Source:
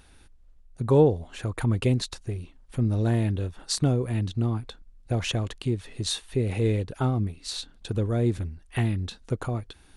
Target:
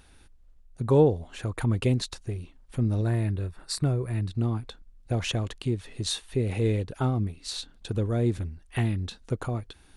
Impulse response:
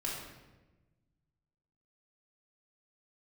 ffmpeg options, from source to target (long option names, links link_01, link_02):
-filter_complex "[0:a]asettb=1/sr,asplit=3[link_01][link_02][link_03];[link_01]atrim=end=3.014[link_04];[link_02]atrim=start=3.01:end=4.35,asetpts=PTS-STARTPTS,afade=type=in:duration=0.004:curve=qsin,afade=type=out:start_time=1.336:duration=0.004:curve=qsin,equalizer=frequency=250:width_type=o:width=0.33:gain=-9,equalizer=frequency=500:width_type=o:width=0.33:gain=-5,equalizer=frequency=800:width_type=o:width=0.33:gain=-5,equalizer=frequency=3150:width_type=o:width=0.33:gain=-11,equalizer=frequency=6300:width_type=o:width=0.33:gain=-10[link_05];[link_03]atrim=start=4.346[link_06];[link_04][link_05]acrossfade=duration=0.004:curve1=hsin:curve2=qsin[link_07];[link_07][link_06]acrossfade=duration=0.004:curve1=qsin:curve2=hsin,volume=-1dB"